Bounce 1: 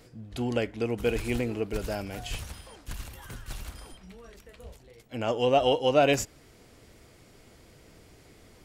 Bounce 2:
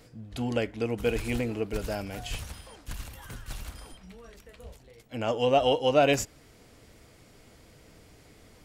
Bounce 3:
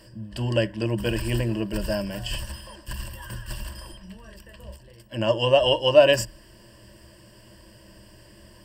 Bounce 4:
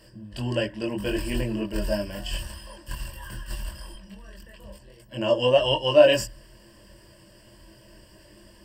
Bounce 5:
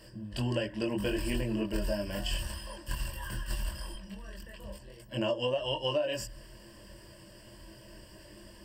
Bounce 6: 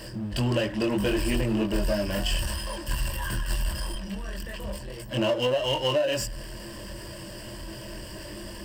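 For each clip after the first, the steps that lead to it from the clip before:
notch filter 370 Hz, Q 12
EQ curve with evenly spaced ripples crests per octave 1.3, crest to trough 16 dB; level +2 dB
multi-voice chorus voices 4, 0.76 Hz, delay 22 ms, depth 2 ms; level +1.5 dB
downward compressor 16 to 1, threshold −27 dBFS, peak gain reduction 18.5 dB
power curve on the samples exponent 0.7; level +3.5 dB

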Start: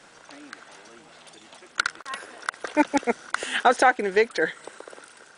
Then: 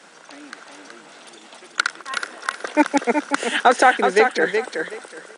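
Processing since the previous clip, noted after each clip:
Butterworth high-pass 160 Hz 48 dB per octave
on a send: repeating echo 373 ms, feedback 21%, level −6 dB
on the sum: level +4 dB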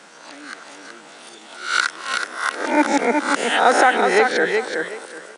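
peak hold with a rise ahead of every peak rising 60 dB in 0.50 s
in parallel at −3 dB: brickwall limiter −10 dBFS, peak gain reduction 11.5 dB
on the sum: level −4.5 dB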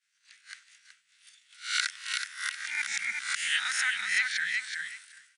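elliptic band-stop filter 100–1,900 Hz, stop band 80 dB
downward expander −36 dBFS
level −4 dB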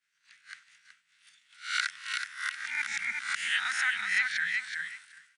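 high-shelf EQ 2,700 Hz −11.5 dB
level +4 dB

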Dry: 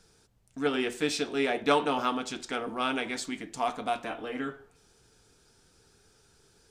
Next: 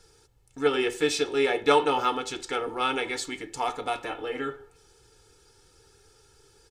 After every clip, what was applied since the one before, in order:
comb filter 2.3 ms, depth 71%
level +1.5 dB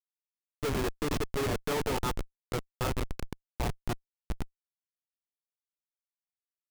comparator with hysteresis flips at −22.5 dBFS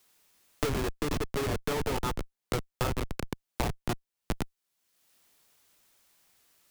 multiband upward and downward compressor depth 100%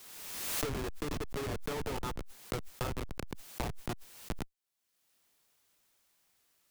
background raised ahead of every attack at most 35 dB per second
level −6.5 dB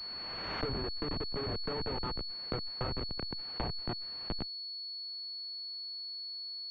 switching amplifier with a slow clock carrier 4,400 Hz

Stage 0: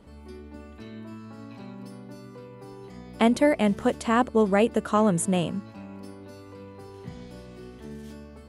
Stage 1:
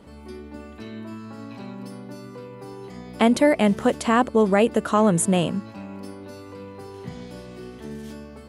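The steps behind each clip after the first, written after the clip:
low-shelf EQ 73 Hz −9 dB
in parallel at −1 dB: brickwall limiter −17.5 dBFS, peak gain reduction 8.5 dB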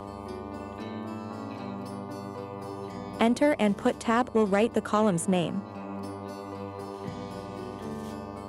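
harmonic generator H 7 −28 dB, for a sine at −6.5 dBFS
hum with harmonics 100 Hz, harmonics 12, −42 dBFS −2 dB per octave
multiband upward and downward compressor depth 40%
level −4.5 dB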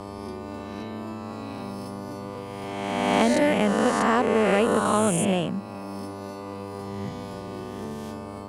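peak hold with a rise ahead of every peak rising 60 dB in 1.92 s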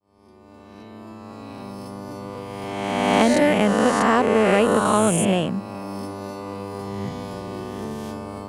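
fade in at the beginning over 2.82 s
level +3.5 dB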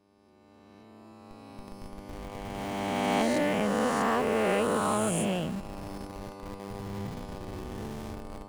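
peak hold with a rise ahead of every peak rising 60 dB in 2.57 s
tuned comb filter 160 Hz, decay 1.6 s, mix 60%
in parallel at −8 dB: comparator with hysteresis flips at −32.5 dBFS
on the sum: level −5.5 dB

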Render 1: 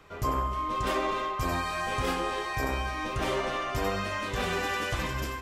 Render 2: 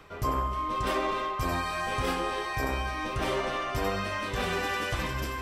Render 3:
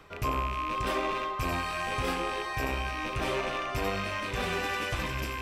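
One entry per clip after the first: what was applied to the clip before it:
notch filter 6,800 Hz, Q 12; reversed playback; upward compression, threshold −31 dBFS; reversed playback
loose part that buzzes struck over −43 dBFS, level −25 dBFS; level −1.5 dB

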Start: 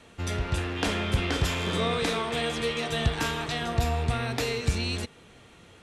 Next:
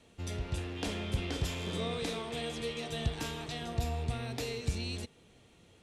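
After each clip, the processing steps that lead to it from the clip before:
parametric band 1,400 Hz −7.5 dB 1.4 octaves
level −7 dB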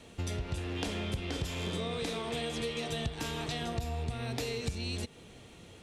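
downward compressor 5 to 1, threshold −41 dBFS, peak gain reduction 14 dB
level +8.5 dB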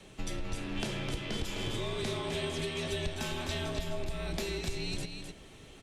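frequency shifter −67 Hz
on a send: single-tap delay 257 ms −6.5 dB
on the sum: Opus 64 kbit/s 48,000 Hz

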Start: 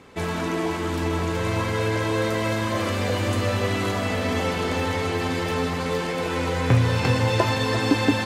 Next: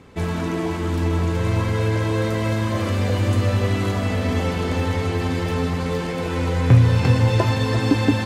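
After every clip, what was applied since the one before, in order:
low-shelf EQ 230 Hz +10.5 dB
level −2 dB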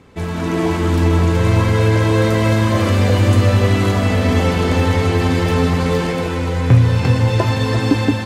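automatic gain control gain up to 8 dB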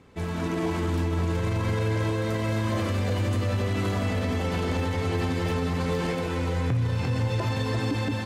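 brickwall limiter −11 dBFS, peak gain reduction 10 dB
level −7.5 dB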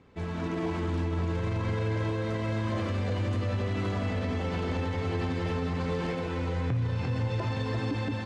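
high-frequency loss of the air 86 metres
level −3.5 dB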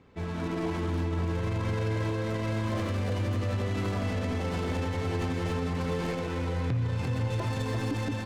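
stylus tracing distortion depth 0.11 ms

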